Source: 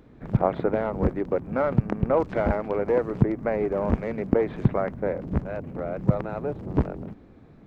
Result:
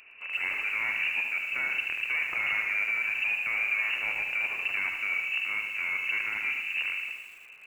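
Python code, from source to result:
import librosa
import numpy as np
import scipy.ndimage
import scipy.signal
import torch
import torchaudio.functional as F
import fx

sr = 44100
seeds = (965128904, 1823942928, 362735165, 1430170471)

p1 = scipy.signal.sosfilt(scipy.signal.butter(2, 89.0, 'highpass', fs=sr, output='sos'), x)
p2 = fx.peak_eq(p1, sr, hz=240.0, db=-11.5, octaves=0.44)
p3 = fx.over_compress(p2, sr, threshold_db=-28.0, ratio=-0.5)
p4 = p2 + (p3 * librosa.db_to_amplitude(1.0))
p5 = 10.0 ** (-18.5 / 20.0) * np.tanh(p4 / 10.0 ** (-18.5 / 20.0))
p6 = fx.echo_feedback(p5, sr, ms=76, feedback_pct=46, wet_db=-6.0)
p7 = fx.freq_invert(p6, sr, carrier_hz=2800)
p8 = fx.echo_crushed(p7, sr, ms=113, feedback_pct=55, bits=7, wet_db=-10)
y = p8 * librosa.db_to_amplitude(-6.5)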